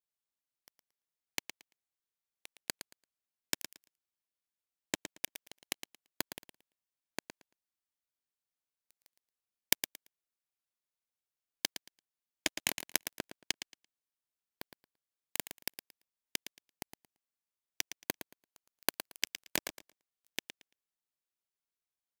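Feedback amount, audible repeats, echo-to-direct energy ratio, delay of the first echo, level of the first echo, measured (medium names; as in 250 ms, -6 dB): 18%, 2, -10.0 dB, 113 ms, -10.0 dB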